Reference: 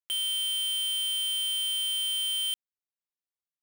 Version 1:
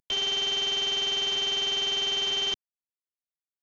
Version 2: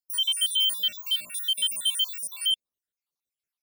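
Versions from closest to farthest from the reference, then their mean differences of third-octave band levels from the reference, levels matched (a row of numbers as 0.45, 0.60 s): 2, 1; 6.0, 15.5 dB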